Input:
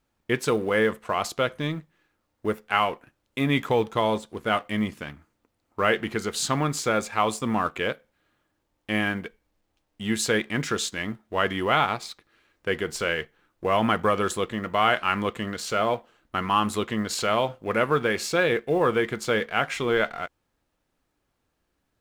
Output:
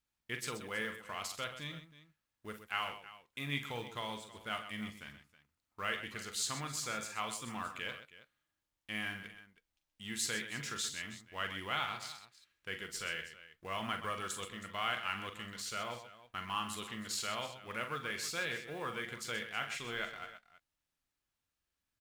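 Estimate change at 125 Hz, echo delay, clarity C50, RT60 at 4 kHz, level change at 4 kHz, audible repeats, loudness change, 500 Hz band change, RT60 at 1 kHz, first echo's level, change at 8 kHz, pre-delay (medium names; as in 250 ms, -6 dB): -16.0 dB, 42 ms, no reverb, no reverb, -8.5 dB, 3, -14.0 dB, -21.0 dB, no reverb, -9.0 dB, -7.0 dB, no reverb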